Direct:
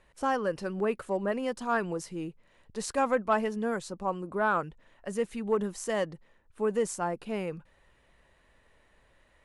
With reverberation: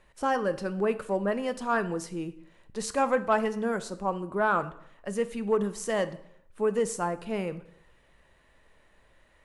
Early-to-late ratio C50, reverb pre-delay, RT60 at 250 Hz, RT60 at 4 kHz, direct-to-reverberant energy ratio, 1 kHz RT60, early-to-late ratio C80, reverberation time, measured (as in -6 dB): 15.0 dB, 4 ms, 0.70 s, 0.60 s, 11.5 dB, 0.65 s, 18.5 dB, 0.70 s